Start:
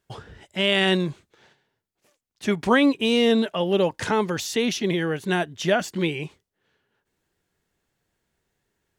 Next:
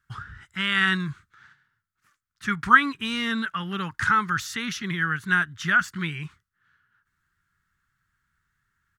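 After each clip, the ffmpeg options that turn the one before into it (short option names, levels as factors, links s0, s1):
-af "firequalizer=gain_entry='entry(120,0);entry(240,-11);entry(550,-29);entry(1300,10);entry(2500,-7)':delay=0.05:min_phase=1,volume=1.33"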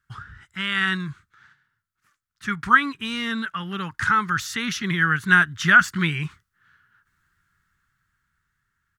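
-af "dynaudnorm=f=380:g=9:m=3.76,volume=0.891"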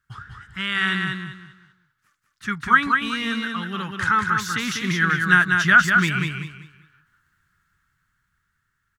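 -af "aecho=1:1:195|390|585|780:0.596|0.167|0.0467|0.0131"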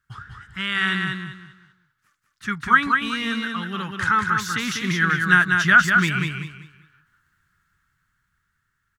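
-af anull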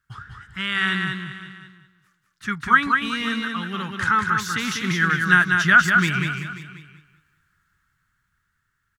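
-af "aecho=1:1:537:0.126"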